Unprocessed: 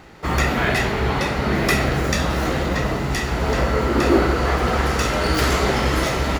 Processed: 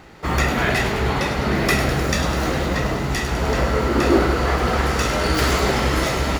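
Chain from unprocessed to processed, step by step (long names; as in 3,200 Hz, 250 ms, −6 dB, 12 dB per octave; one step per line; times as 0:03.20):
delay with a high-pass on its return 102 ms, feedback 69%, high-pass 3,600 Hz, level −8 dB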